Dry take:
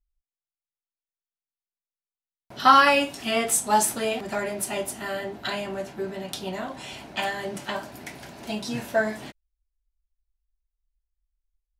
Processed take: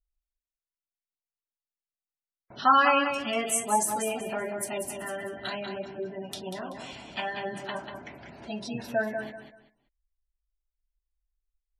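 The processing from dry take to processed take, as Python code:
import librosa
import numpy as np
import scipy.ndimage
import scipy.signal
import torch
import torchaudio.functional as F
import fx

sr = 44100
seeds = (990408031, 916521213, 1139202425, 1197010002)

y = fx.lowpass(x, sr, hz=3600.0, slope=6, at=(7.8, 8.28))
y = fx.spec_gate(y, sr, threshold_db=-20, keep='strong')
y = fx.echo_feedback(y, sr, ms=191, feedback_pct=26, wet_db=-7)
y = y * 10.0 ** (-4.5 / 20.0)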